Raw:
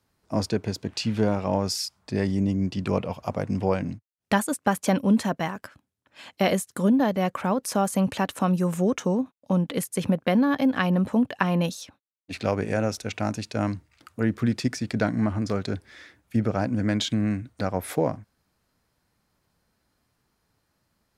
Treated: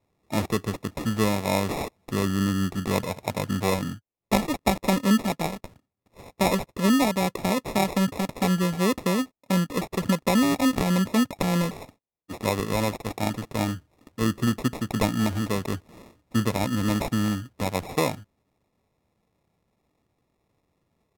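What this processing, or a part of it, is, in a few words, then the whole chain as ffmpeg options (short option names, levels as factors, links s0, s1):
crushed at another speed: -af "highpass=58,asetrate=55125,aresample=44100,acrusher=samples=23:mix=1:aa=0.000001,asetrate=35280,aresample=44100"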